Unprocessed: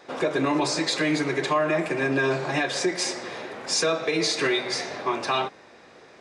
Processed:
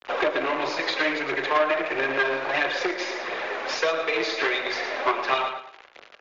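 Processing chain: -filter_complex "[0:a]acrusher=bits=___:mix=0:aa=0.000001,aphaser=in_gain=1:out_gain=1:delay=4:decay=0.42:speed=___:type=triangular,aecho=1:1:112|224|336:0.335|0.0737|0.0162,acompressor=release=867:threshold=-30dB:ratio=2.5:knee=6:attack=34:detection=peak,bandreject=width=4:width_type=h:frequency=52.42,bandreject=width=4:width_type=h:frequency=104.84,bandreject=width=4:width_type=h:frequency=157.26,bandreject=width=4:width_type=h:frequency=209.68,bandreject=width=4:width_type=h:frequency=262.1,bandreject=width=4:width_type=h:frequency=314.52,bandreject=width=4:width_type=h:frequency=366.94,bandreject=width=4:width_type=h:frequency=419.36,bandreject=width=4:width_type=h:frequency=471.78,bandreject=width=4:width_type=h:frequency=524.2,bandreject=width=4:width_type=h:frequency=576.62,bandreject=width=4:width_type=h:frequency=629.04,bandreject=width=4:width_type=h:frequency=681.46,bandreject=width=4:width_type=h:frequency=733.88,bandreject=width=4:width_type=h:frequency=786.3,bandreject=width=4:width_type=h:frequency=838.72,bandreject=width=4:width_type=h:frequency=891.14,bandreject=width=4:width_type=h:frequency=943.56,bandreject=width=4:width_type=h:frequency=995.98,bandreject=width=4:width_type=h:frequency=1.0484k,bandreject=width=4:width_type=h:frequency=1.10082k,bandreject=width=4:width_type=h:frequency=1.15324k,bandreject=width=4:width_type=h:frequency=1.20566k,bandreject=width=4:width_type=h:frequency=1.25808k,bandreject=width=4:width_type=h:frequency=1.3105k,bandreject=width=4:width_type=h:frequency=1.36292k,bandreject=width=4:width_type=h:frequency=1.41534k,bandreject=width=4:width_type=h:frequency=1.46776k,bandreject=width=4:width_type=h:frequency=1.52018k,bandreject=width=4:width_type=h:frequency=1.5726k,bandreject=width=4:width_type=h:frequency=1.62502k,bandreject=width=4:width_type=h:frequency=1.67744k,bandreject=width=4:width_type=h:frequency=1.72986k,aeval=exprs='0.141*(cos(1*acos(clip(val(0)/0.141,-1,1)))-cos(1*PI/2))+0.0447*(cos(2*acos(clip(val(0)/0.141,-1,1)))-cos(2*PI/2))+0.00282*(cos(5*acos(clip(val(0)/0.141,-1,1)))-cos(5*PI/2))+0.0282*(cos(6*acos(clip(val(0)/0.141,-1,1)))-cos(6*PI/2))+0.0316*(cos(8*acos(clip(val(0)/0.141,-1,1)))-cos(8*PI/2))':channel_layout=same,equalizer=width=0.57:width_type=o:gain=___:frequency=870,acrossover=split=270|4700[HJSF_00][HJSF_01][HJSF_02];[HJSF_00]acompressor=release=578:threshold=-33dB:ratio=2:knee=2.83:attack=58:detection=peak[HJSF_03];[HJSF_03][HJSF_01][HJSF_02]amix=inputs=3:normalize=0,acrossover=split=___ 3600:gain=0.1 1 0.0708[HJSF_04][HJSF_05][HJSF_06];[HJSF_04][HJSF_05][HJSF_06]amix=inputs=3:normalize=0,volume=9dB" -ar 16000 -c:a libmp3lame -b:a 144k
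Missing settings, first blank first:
6, 1.5, -2.5, 400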